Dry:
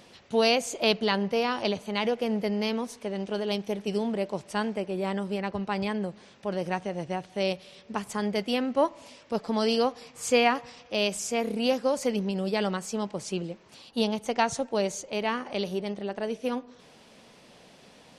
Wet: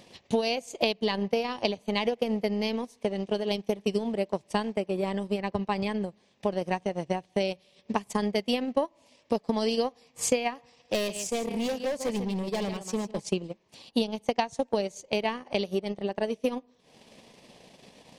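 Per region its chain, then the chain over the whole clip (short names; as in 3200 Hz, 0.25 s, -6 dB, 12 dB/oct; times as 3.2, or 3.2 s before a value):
10.58–13.28 echo 0.145 s -10.5 dB + hard clip -27.5 dBFS
whole clip: bell 1400 Hz -12 dB 0.3 oct; transient shaper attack +9 dB, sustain -12 dB; compressor 6:1, threshold -22 dBFS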